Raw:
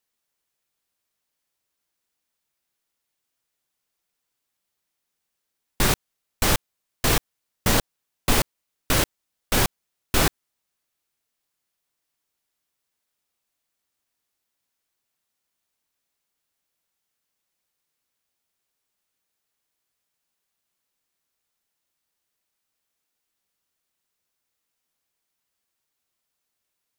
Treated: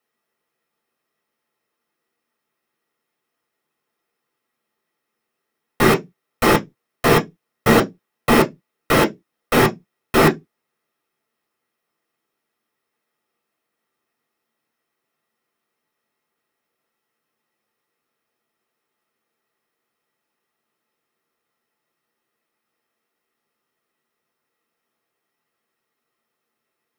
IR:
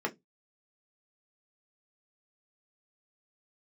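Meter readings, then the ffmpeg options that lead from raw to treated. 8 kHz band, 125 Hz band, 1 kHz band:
−4.0 dB, +4.5 dB, +9.0 dB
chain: -filter_complex "[1:a]atrim=start_sample=2205[link_01];[0:a][link_01]afir=irnorm=-1:irlink=0,volume=2dB"

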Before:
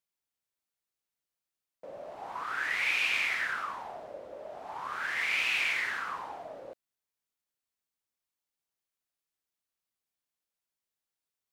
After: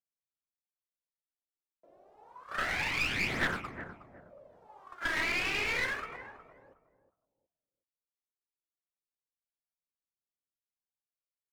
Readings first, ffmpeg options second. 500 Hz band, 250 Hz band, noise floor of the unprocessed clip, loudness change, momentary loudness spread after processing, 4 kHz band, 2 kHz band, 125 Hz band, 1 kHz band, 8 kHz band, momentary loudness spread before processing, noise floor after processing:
0.0 dB, +11.5 dB, below −85 dBFS, −1.5 dB, 16 LU, −2.0 dB, −2.5 dB, can't be measured, −3.0 dB, −0.5 dB, 18 LU, below −85 dBFS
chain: -filter_complex "[0:a]agate=range=-30dB:threshold=-32dB:ratio=16:detection=peak,acrossover=split=4900[link_01][link_02];[link_02]acompressor=threshold=-53dB:ratio=4:attack=1:release=60[link_03];[link_01][link_03]amix=inputs=2:normalize=0,highshelf=frequency=3200:gain=10,acrossover=split=380[link_04][link_05];[link_05]acompressor=threshold=-35dB:ratio=6[link_06];[link_04][link_06]amix=inputs=2:normalize=0,tiltshelf=frequency=1400:gain=8.5,aphaser=in_gain=1:out_gain=1:delay=3.2:decay=0.64:speed=0.29:type=triangular,asplit=2[link_07][link_08];[link_08]adelay=365,lowpass=frequency=880:poles=1,volume=-10dB,asplit=2[link_09][link_10];[link_10]adelay=365,lowpass=frequency=880:poles=1,volume=0.29,asplit=2[link_11][link_12];[link_12]adelay=365,lowpass=frequency=880:poles=1,volume=0.29[link_13];[link_09][link_11][link_13]amix=inputs=3:normalize=0[link_14];[link_07][link_14]amix=inputs=2:normalize=0,aeval=exprs='clip(val(0),-1,0.00944)':channel_layout=same,volume=8dB"

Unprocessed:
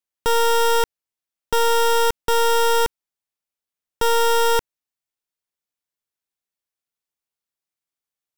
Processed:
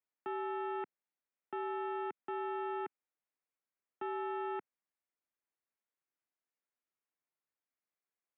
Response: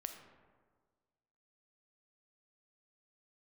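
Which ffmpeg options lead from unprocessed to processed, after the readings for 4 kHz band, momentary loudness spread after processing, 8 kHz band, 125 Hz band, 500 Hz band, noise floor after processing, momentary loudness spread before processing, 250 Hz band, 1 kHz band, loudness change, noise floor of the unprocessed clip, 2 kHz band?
−36.0 dB, 7 LU, below −40 dB, below −30 dB, −19.5 dB, below −85 dBFS, 6 LU, −1.5 dB, −19.0 dB, −20.5 dB, below −85 dBFS, −21.5 dB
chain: -af "asoftclip=type=hard:threshold=-33dB,highpass=frequency=270:width_type=q:width=0.5412,highpass=frequency=270:width_type=q:width=1.307,lowpass=frequency=2500:width_type=q:width=0.5176,lowpass=frequency=2500:width_type=q:width=0.7071,lowpass=frequency=2500:width_type=q:width=1.932,afreqshift=-78,volume=-2.5dB"

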